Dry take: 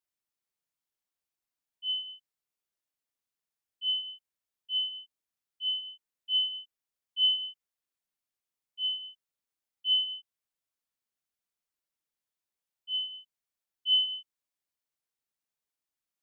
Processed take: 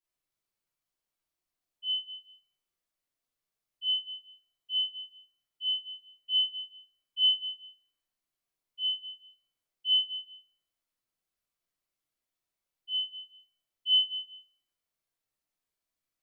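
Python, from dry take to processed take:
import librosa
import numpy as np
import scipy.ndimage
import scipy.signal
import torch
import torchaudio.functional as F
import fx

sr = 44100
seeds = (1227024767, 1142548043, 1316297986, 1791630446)

y = fx.room_shoebox(x, sr, seeds[0], volume_m3=130.0, walls='mixed', distance_m=3.0)
y = y * librosa.db_to_amplitude(-8.5)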